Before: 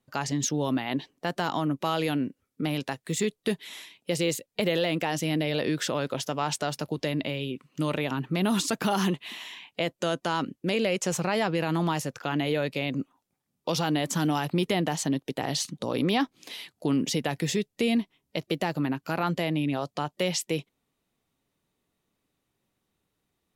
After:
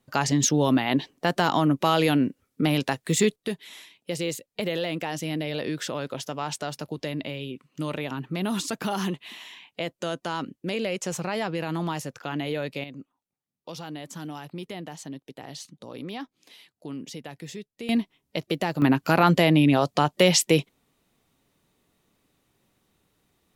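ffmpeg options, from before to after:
ffmpeg -i in.wav -af "asetnsamples=nb_out_samples=441:pad=0,asendcmd='3.36 volume volume -2.5dB;12.84 volume volume -11dB;17.89 volume volume 1.5dB;18.82 volume volume 9dB',volume=6dB" out.wav

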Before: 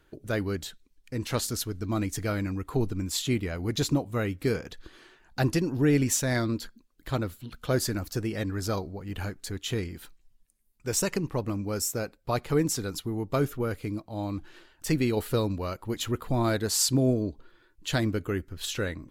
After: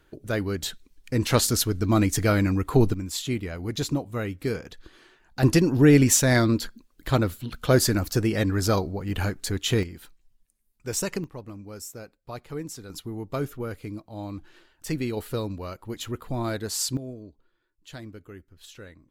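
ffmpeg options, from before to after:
ffmpeg -i in.wav -af "asetnsamples=nb_out_samples=441:pad=0,asendcmd='0.63 volume volume 8dB;2.94 volume volume -1dB;5.43 volume volume 7dB;9.83 volume volume -1dB;11.24 volume volume -9.5dB;12.9 volume volume -3dB;16.97 volume volume -14dB',volume=2dB" out.wav

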